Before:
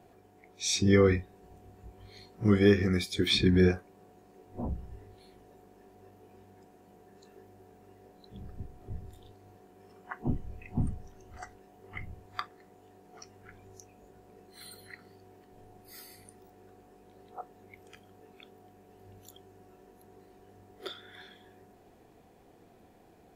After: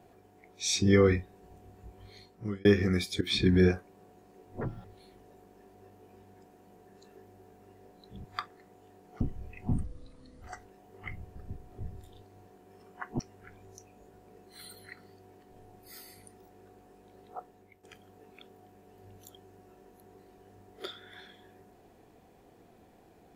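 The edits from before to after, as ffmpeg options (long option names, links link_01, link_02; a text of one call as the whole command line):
ffmpeg -i in.wav -filter_complex "[0:a]asplit=12[link_01][link_02][link_03][link_04][link_05][link_06][link_07][link_08][link_09][link_10][link_11][link_12];[link_01]atrim=end=2.65,asetpts=PTS-STARTPTS,afade=type=out:start_time=2.09:duration=0.56[link_13];[link_02]atrim=start=2.65:end=3.21,asetpts=PTS-STARTPTS,afade=type=in:duration=0.004:curve=hsin,afade=type=out:start_time=0.556:duration=0.004:curve=hsin:silence=0.188365[link_14];[link_03]atrim=start=3.21:end=4.614,asetpts=PTS-STARTPTS,afade=type=in:duration=0.31:curve=qsin:silence=0.188365[link_15];[link_04]atrim=start=4.61:end=5.05,asetpts=PTS-STARTPTS,asetrate=82467,aresample=44100,atrim=end_sample=10376,asetpts=PTS-STARTPTS[link_16];[link_05]atrim=start=5.046:end=8.452[link_17];[link_06]atrim=start=12.248:end=13.212[link_18];[link_07]atrim=start=10.288:end=10.924[link_19];[link_08]atrim=start=10.92:end=11.32,asetpts=PTS-STARTPTS,asetrate=29988,aresample=44100,atrim=end_sample=25941,asetpts=PTS-STARTPTS[link_20];[link_09]atrim=start=11.316:end=12.252[link_21];[link_10]atrim=start=8.448:end=10.292[link_22];[link_11]atrim=start=13.208:end=17.85,asetpts=PTS-STARTPTS,afade=type=out:start_time=4.182:duration=0.46:silence=0.266073[link_23];[link_12]atrim=start=17.85,asetpts=PTS-STARTPTS,afade=type=in:duration=0.004:curve=hsin:silence=0.266073[link_24];[link_13][link_14][link_15]concat=n=3:v=0:a=1[link_25];[link_25][link_16]acrossfade=duration=0.004:curve1=hsin:curve2=hsin[link_26];[link_26][link_17]acrossfade=duration=0.004:curve1=hsin:curve2=hsin[link_27];[link_27][link_18]acrossfade=duration=0.004:curve1=hsin:curve2=hsin[link_28];[link_28][link_19]acrossfade=duration=0.004:curve1=hsin:curve2=hsin[link_29];[link_29][link_20]acrossfade=duration=0.004:curve1=hsin:curve2=hsin[link_30];[link_30][link_21]acrossfade=duration=0.004:curve1=hsin:curve2=hsin[link_31];[link_31][link_22]acrossfade=duration=0.004:curve1=hsin:curve2=hsin[link_32];[link_23][link_24]concat=n=2:v=0:a=1[link_33];[link_32][link_33]acrossfade=duration=0.004:curve1=hsin:curve2=hsin" out.wav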